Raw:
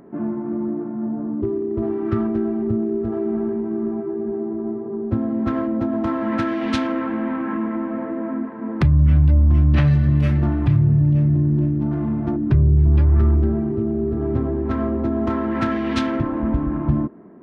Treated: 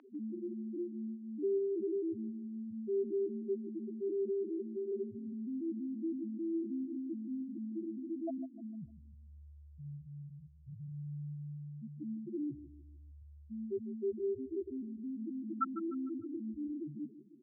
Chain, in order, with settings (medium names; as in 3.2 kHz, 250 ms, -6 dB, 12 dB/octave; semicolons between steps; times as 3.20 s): compression 6:1, threshold -19 dBFS, peak gain reduction 8.5 dB; loudest bins only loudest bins 1; band-pass 790–2300 Hz; feedback delay 151 ms, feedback 41%, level -14.5 dB; trim +11.5 dB